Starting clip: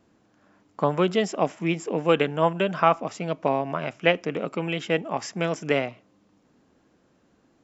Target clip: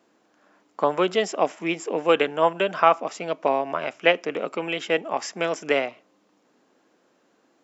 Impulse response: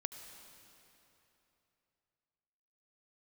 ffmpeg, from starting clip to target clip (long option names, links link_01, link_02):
-af "highpass=340,volume=2.5dB"